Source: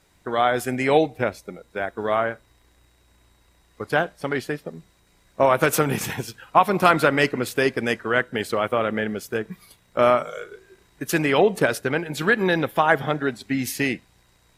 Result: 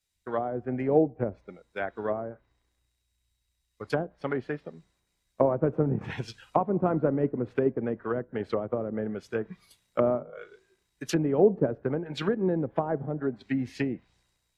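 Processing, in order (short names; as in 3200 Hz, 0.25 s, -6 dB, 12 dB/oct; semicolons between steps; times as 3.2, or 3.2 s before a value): treble ducked by the level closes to 450 Hz, closed at -18.5 dBFS; three-band expander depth 70%; gain -3 dB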